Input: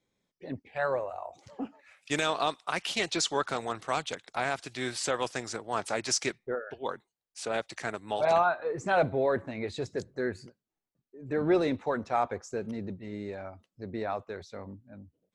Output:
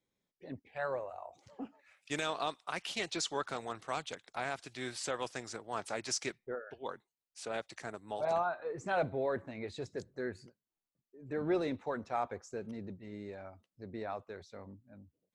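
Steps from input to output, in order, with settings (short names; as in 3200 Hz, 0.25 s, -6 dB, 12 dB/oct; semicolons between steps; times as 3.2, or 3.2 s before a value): 7.81–8.53 bell 2600 Hz -6.5 dB 1.6 oct; gain -7 dB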